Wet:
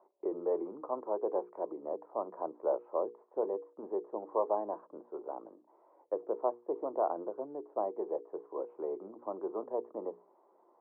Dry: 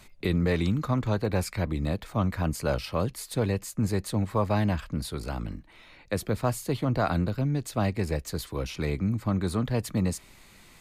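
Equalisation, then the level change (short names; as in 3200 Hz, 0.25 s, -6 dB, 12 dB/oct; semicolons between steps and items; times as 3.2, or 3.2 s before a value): elliptic band-pass 360–1000 Hz, stop band 70 dB; air absorption 460 m; notches 60/120/180/240/300/360/420/480 Hz; 0.0 dB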